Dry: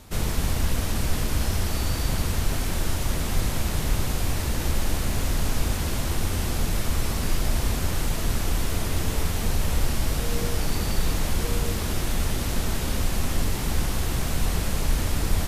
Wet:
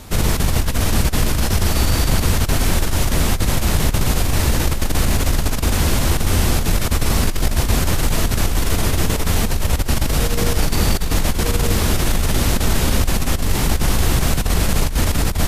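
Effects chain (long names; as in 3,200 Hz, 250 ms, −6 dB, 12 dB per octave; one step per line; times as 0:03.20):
compressor whose output falls as the input rises −23 dBFS, ratio −0.5
level +8.5 dB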